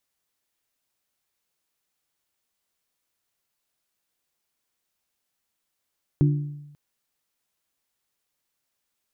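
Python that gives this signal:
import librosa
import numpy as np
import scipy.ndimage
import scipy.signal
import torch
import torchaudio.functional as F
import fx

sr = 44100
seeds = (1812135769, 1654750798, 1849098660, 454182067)

y = fx.strike_glass(sr, length_s=0.54, level_db=-14.0, body='bell', hz=146.0, decay_s=0.96, tilt_db=6.5, modes=3)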